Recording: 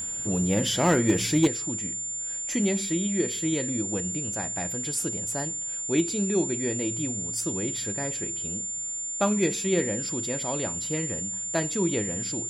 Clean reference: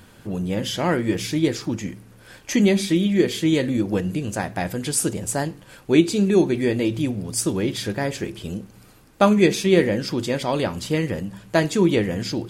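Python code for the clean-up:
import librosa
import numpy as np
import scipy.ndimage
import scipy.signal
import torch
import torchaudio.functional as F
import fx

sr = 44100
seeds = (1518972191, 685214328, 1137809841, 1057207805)

y = fx.fix_declip(x, sr, threshold_db=-13.5)
y = fx.notch(y, sr, hz=7200.0, q=30.0)
y = fx.fix_level(y, sr, at_s=1.47, step_db=8.5)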